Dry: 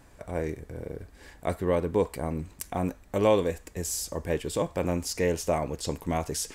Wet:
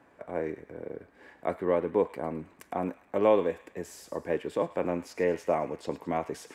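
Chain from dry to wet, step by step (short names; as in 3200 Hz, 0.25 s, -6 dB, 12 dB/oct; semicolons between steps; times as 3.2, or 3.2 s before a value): HPF 84 Hz; three-band isolator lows -15 dB, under 200 Hz, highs -18 dB, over 2600 Hz; thin delay 0.107 s, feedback 46%, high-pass 1600 Hz, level -12 dB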